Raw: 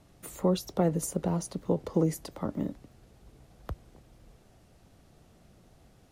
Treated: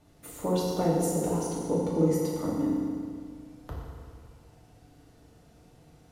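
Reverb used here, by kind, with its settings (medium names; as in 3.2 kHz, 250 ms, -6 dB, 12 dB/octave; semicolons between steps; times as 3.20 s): FDN reverb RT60 2.1 s, low-frequency decay 1×, high-frequency decay 0.75×, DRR -5.5 dB; trim -4.5 dB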